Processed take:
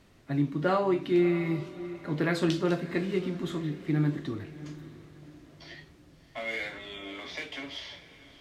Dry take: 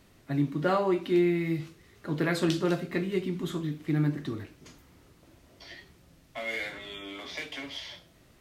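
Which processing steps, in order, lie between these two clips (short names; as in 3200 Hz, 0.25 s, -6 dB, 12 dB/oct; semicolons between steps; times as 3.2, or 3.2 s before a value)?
high shelf 10000 Hz -11.5 dB; on a send: diffused feedback echo 0.639 s, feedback 40%, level -15.5 dB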